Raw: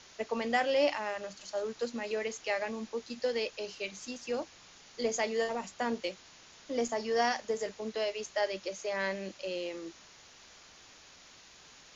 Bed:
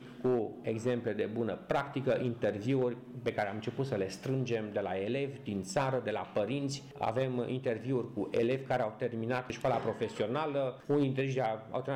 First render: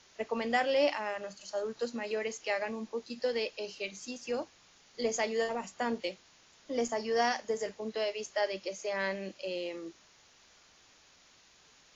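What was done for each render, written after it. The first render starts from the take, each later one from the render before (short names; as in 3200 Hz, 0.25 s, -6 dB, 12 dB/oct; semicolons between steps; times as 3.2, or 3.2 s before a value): noise print and reduce 6 dB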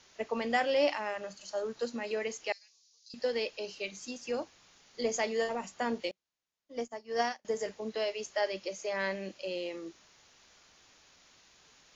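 2.52–3.14 Butterworth band-pass 5400 Hz, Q 2.2; 6.11–7.45 upward expander 2.5:1, over -46 dBFS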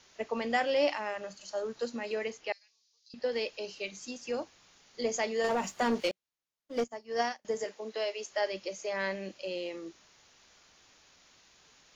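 2.3–3.32 air absorption 120 m; 5.44–6.84 sample leveller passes 2; 7.64–8.31 HPF 310 Hz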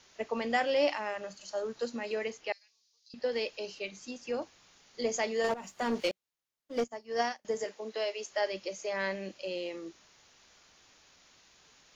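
3.79–4.42 high shelf 6800 Hz -10 dB; 5.54–6.05 fade in, from -16 dB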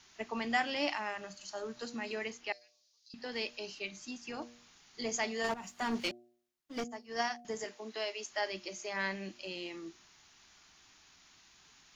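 bell 520 Hz -15 dB 0.42 oct; de-hum 119.7 Hz, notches 6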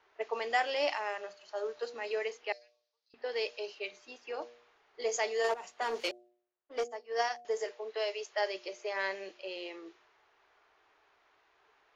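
low-pass opened by the level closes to 1500 Hz, open at -31.5 dBFS; resonant low shelf 310 Hz -13.5 dB, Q 3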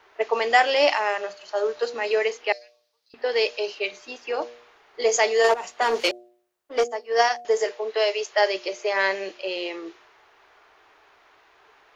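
gain +12 dB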